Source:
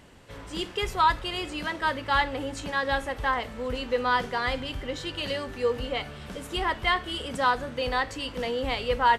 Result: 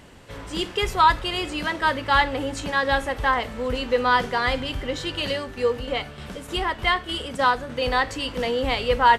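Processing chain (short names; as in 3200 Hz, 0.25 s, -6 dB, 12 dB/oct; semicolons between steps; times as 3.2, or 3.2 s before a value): 5.27–7.82 tremolo saw down 3.3 Hz, depth 50%; gain +5 dB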